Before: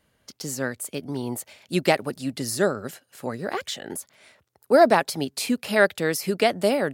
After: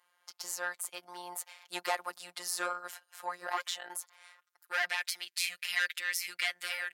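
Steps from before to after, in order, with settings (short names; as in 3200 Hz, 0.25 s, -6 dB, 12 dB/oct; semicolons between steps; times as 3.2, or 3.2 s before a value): soft clip -17 dBFS, distortion -9 dB; high-pass sweep 960 Hz -> 2000 Hz, 4.2–4.95; robotiser 177 Hz; gain -3 dB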